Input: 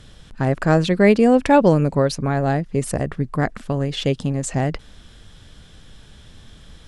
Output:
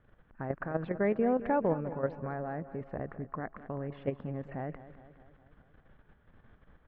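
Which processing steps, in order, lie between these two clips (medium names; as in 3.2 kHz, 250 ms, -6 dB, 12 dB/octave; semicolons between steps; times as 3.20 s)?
low-pass 1.8 kHz 24 dB/octave; bass shelf 270 Hz -7.5 dB; peak limiter -12.5 dBFS, peak gain reduction 6.5 dB; level held to a coarse grid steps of 10 dB; on a send: feedback delay 206 ms, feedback 58%, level -14.5 dB; on the sum: trim -6.5 dB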